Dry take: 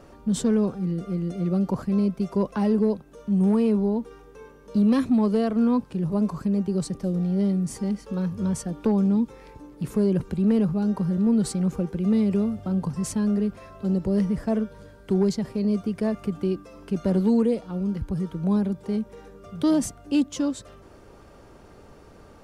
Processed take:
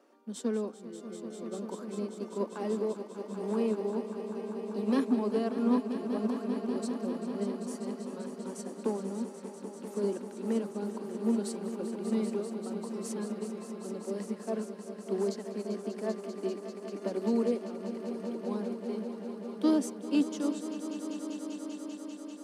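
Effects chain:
Butterworth high-pass 230 Hz 48 dB per octave
echo that builds up and dies away 196 ms, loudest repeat 5, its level −10 dB
expander for the loud parts 1.5 to 1, over −36 dBFS
level −4.5 dB

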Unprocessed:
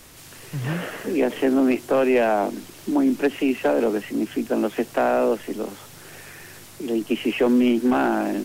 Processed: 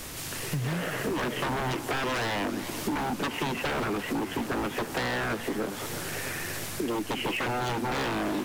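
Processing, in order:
wave folding −22 dBFS
downward compressor 6 to 1, threshold −36 dBFS, peak gain reduction 10.5 dB
feedback echo with a swinging delay time 335 ms, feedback 70%, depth 195 cents, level −12.5 dB
level +7.5 dB

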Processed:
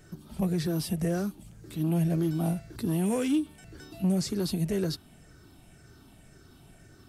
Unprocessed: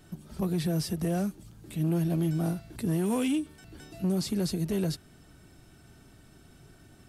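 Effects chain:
rippled gain that drifts along the octave scale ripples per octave 0.53, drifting −1.9 Hz, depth 7 dB

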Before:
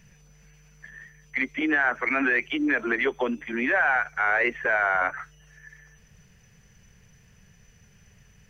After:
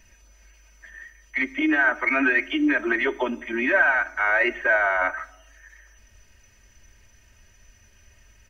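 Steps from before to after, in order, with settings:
parametric band 160 Hz −10.5 dB 0.87 octaves
comb filter 3.2 ms, depth 94%
on a send: convolution reverb RT60 0.90 s, pre-delay 17 ms, DRR 18 dB

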